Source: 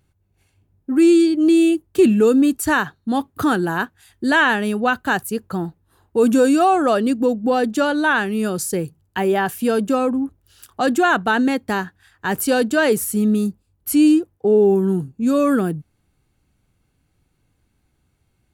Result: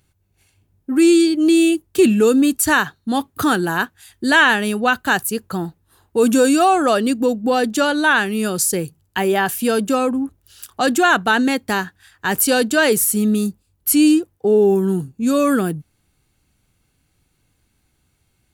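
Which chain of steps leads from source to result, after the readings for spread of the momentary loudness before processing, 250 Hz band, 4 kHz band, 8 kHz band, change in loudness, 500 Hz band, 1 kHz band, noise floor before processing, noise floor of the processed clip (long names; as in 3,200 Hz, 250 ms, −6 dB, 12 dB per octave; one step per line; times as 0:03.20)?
11 LU, 0.0 dB, +6.0 dB, +7.5 dB, +1.0 dB, +0.5 dB, +1.5 dB, −67 dBFS, −66 dBFS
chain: high-shelf EQ 2,000 Hz +8 dB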